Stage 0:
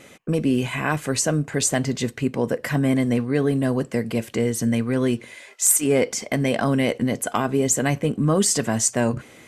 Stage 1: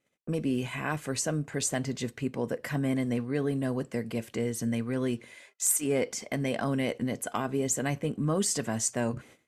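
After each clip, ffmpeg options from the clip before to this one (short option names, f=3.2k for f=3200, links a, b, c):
-af "agate=range=-25dB:threshold=-43dB:ratio=16:detection=peak,volume=-8.5dB"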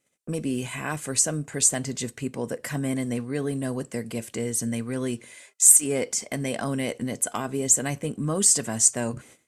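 -af "equalizer=f=8.6k:t=o:w=1.1:g=12,volume=1dB"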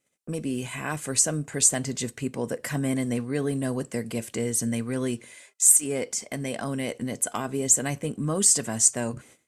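-af "dynaudnorm=f=560:g=3:m=3dB,volume=-2dB"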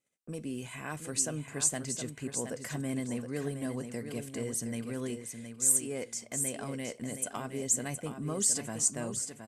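-af "aecho=1:1:718|1436|2154:0.398|0.0836|0.0176,volume=-8.5dB"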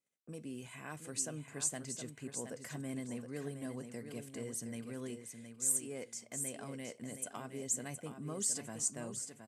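-af "highpass=79,volume=-7dB"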